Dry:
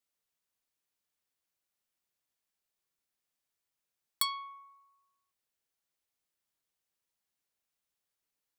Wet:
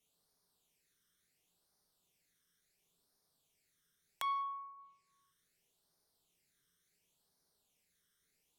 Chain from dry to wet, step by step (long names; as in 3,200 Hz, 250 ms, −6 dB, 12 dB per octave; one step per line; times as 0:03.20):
all-pass phaser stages 12, 0.71 Hz, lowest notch 780–2,700 Hz
reverb whose tail is shaped and stops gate 220 ms falling, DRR 2 dB
treble cut that deepens with the level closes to 930 Hz, closed at −49 dBFS
level +9.5 dB